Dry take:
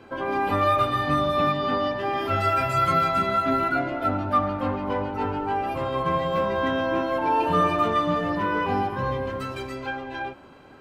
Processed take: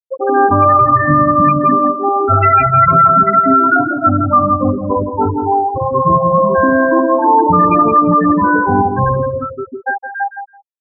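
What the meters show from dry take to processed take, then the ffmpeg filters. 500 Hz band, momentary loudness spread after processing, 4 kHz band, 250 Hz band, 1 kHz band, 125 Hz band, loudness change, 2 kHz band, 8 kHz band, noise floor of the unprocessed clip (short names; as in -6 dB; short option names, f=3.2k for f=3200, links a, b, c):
+10.5 dB, 11 LU, under -40 dB, +13.0 dB, +13.0 dB, +12.5 dB, +12.5 dB, +10.5 dB, n/a, -48 dBFS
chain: -filter_complex "[0:a]lowpass=3.9k,afftfilt=real='re*gte(hypot(re,im),0.178)':imag='im*gte(hypot(re,im),0.178)':win_size=1024:overlap=0.75,adynamicequalizer=threshold=0.01:dfrequency=600:dqfactor=1.6:tfrequency=600:tqfactor=1.6:attack=5:release=100:ratio=0.375:range=3:mode=cutabove:tftype=bell,asplit=2[a][b];[b]adelay=166,lowpass=f=3k:p=1,volume=-8.5dB,asplit=2[c][d];[d]adelay=166,lowpass=f=3k:p=1,volume=0.15[e];[c][e]amix=inputs=2:normalize=0[f];[a][f]amix=inputs=2:normalize=0,alimiter=level_in=16.5dB:limit=-1dB:release=50:level=0:latency=1,volume=-1dB"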